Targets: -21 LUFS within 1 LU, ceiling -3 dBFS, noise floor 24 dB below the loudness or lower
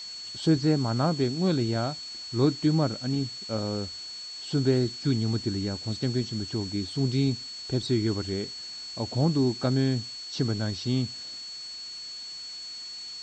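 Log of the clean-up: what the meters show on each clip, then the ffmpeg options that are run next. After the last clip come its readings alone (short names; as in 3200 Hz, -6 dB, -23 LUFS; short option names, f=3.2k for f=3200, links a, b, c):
steady tone 4400 Hz; tone level -37 dBFS; noise floor -40 dBFS; noise floor target -53 dBFS; loudness -28.5 LUFS; peak -12.0 dBFS; loudness target -21.0 LUFS
-> -af "bandreject=f=4.4k:w=30"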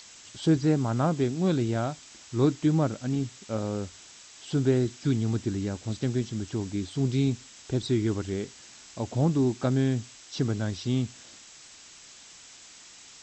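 steady tone none; noise floor -50 dBFS; noise floor target -52 dBFS
-> -af "afftdn=nr=6:nf=-50"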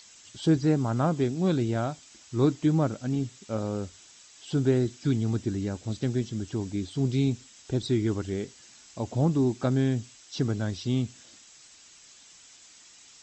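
noise floor -54 dBFS; loudness -28.0 LUFS; peak -12.5 dBFS; loudness target -21.0 LUFS
-> -af "volume=7dB"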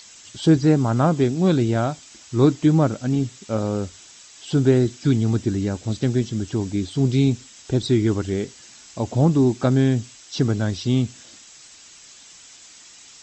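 loudness -21.0 LUFS; peak -5.5 dBFS; noise floor -47 dBFS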